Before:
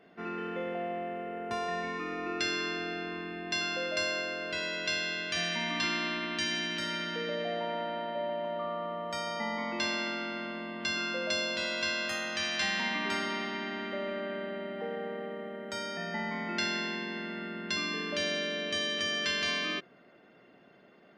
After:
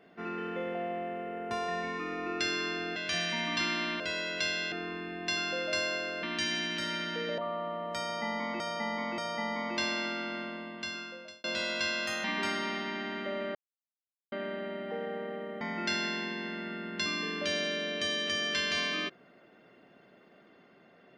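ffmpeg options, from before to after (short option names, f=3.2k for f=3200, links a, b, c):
-filter_complex "[0:a]asplit=12[a][b][c][d][e][f][g][h][i][j][k][l];[a]atrim=end=2.962[m];[b]atrim=start=5.188:end=6.232[n];[c]atrim=start=4.468:end=5.192[o];[d]atrim=start=2.958:end=4.472[p];[e]atrim=start=6.228:end=7.382[q];[f]atrim=start=8.558:end=9.782[r];[g]atrim=start=9.198:end=9.782[s];[h]atrim=start=9.198:end=11.46,asetpts=PTS-STARTPTS,afade=t=out:st=1.202:d=1.06[t];[i]atrim=start=11.46:end=12.262,asetpts=PTS-STARTPTS,afade=t=in:d=0.004:c=hsin[u];[j]atrim=start=12.908:end=14.22,asetpts=PTS-STARTPTS,afade=t=out:st=1.308:d=0.004:c=hsin,apad=pad_dur=0.77[v];[k]atrim=start=14.22:end=15.512,asetpts=PTS-STARTPTS,afade=t=in:d=0.004:c=hsin[w];[l]atrim=start=16.318[x];[m][n]acrossfade=d=0.004:c1=hsin:c2=hsin[y];[y][o]acrossfade=d=0.004:c1=hsin:c2=hsin[z];[z][p]acrossfade=d=0.004:c1=hsin:c2=hsin[aa];[aa][q]acrossfade=d=0.004:c1=hsin:c2=hsin[ab];[ab][r]acrossfade=d=0.004:c1=hsin:c2=hsin[ac];[ac][s]acrossfade=d=0.004:c1=hsin:c2=hsin[ad];[t][u]concat=n=2:v=0:a=1[ae];[ad][ae]acrossfade=d=0.004:c1=hsin:c2=hsin[af];[v][w]concat=n=2:v=0:a=1[ag];[af][ag]acrossfade=d=0.004:c1=hsin:c2=hsin[ah];[ah][x]acrossfade=d=0.004:c1=hsin:c2=hsin"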